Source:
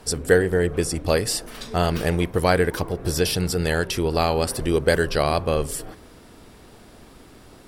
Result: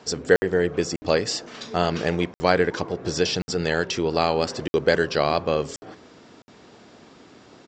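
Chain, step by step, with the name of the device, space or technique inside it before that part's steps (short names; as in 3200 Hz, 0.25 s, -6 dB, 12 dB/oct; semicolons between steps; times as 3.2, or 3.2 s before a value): call with lost packets (HPF 150 Hz 12 dB/oct; downsampling 16000 Hz; packet loss packets of 60 ms random)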